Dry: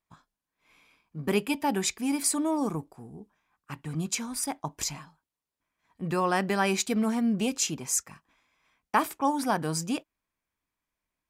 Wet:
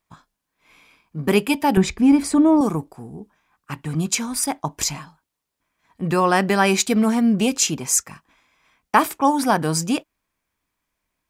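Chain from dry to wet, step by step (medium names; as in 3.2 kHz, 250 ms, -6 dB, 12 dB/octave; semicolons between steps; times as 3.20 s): 1.77–2.61 s: RIAA curve playback; trim +8.5 dB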